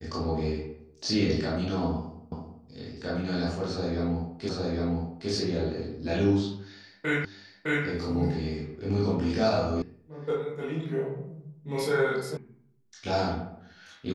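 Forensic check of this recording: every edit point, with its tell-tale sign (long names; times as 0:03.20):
0:02.32: the same again, the last 0.33 s
0:04.49: the same again, the last 0.81 s
0:07.25: the same again, the last 0.61 s
0:09.82: cut off before it has died away
0:12.37: cut off before it has died away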